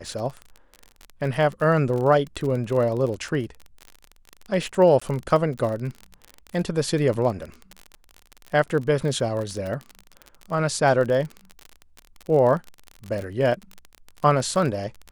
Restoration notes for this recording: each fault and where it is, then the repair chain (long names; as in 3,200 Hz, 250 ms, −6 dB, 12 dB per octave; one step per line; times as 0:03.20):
surface crackle 35 per second −28 dBFS
0:05.00–0:05.01: drop-out 15 ms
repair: click removal
repair the gap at 0:05.00, 15 ms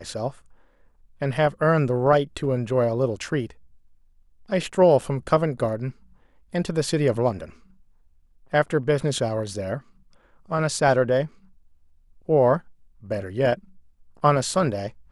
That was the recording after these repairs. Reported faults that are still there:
none of them is left